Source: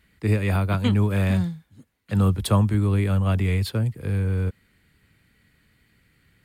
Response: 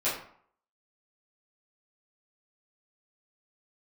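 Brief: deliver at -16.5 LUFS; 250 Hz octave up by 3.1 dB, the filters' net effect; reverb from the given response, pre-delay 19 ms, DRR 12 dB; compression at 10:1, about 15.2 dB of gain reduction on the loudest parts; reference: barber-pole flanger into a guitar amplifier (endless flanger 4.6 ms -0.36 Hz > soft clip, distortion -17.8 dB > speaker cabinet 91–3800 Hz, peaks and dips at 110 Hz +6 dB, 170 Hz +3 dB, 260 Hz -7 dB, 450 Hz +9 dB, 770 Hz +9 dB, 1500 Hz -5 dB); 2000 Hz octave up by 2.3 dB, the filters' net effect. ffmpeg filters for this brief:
-filter_complex "[0:a]equalizer=f=250:t=o:g=4.5,equalizer=f=2k:t=o:g=4.5,acompressor=threshold=-29dB:ratio=10,asplit=2[a][b];[1:a]atrim=start_sample=2205,adelay=19[c];[b][c]afir=irnorm=-1:irlink=0,volume=-21.5dB[d];[a][d]amix=inputs=2:normalize=0,asplit=2[e][f];[f]adelay=4.6,afreqshift=-0.36[g];[e][g]amix=inputs=2:normalize=1,asoftclip=threshold=-28.5dB,highpass=91,equalizer=f=110:t=q:w=4:g=6,equalizer=f=170:t=q:w=4:g=3,equalizer=f=260:t=q:w=4:g=-7,equalizer=f=450:t=q:w=4:g=9,equalizer=f=770:t=q:w=4:g=9,equalizer=f=1.5k:t=q:w=4:g=-5,lowpass=f=3.8k:w=0.5412,lowpass=f=3.8k:w=1.3066,volume=20dB"

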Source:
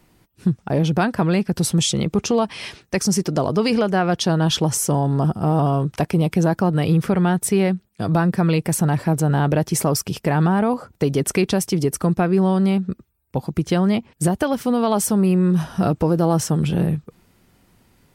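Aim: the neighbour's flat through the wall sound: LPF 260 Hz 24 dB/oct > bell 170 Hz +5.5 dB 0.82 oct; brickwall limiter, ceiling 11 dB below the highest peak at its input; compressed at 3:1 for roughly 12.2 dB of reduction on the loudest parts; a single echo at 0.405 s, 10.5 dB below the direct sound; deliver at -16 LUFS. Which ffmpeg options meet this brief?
-af "acompressor=threshold=-31dB:ratio=3,alimiter=level_in=3.5dB:limit=-24dB:level=0:latency=1,volume=-3.5dB,lowpass=f=260:w=0.5412,lowpass=f=260:w=1.3066,equalizer=f=170:t=o:w=0.82:g=5.5,aecho=1:1:405:0.299,volume=17.5dB"

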